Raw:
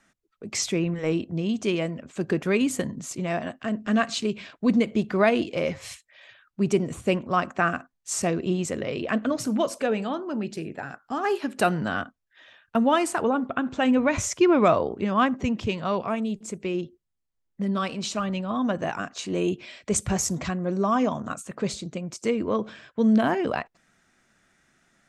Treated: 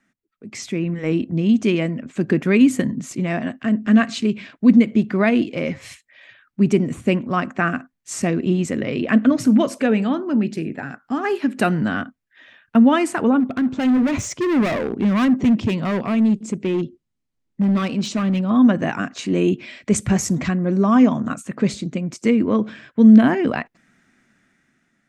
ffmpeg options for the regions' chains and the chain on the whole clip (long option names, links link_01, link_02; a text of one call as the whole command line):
ffmpeg -i in.wav -filter_complex "[0:a]asettb=1/sr,asplit=3[link_01][link_02][link_03];[link_01]atrim=end=13.404[link_04];[link_02]atrim=start=13.4:end=18.5,asetpts=PTS-STARTPTS,afade=type=in:duration=0.004:curve=qsin,afade=type=out:start_time=5.096:duration=0.004:curve=qsin,lowpass=8600,equalizer=frequency=1800:width=1.5:gain=-5.5,asoftclip=type=hard:threshold=-25.5dB[link_05];[link_03]atrim=start=18.496[link_06];[link_04][link_05]acrossfade=duration=0.004:curve1=hsin:curve2=qsin[link_07];[link_07][link_06]acrossfade=duration=0.004:curve1=qsin:curve2=hsin,dynaudnorm=framelen=280:gausssize=7:maxgain=11.5dB,equalizer=frequency=125:width_type=o:width=1:gain=5,equalizer=frequency=250:width_type=o:width=1:gain=11,equalizer=frequency=2000:width_type=o:width=1:gain=7,volume=-9dB" out.wav